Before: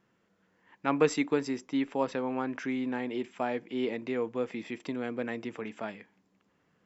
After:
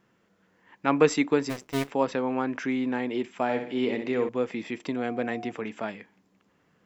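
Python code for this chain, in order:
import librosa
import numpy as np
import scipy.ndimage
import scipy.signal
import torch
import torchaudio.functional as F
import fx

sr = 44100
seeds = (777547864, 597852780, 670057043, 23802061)

y = fx.cycle_switch(x, sr, every=2, mode='muted', at=(1.49, 1.9), fade=0.02)
y = fx.room_flutter(y, sr, wall_m=11.0, rt60_s=0.49, at=(3.43, 4.29))
y = fx.dmg_tone(y, sr, hz=720.0, level_db=-43.0, at=(4.96, 5.5), fade=0.02)
y = y * librosa.db_to_amplitude(4.5)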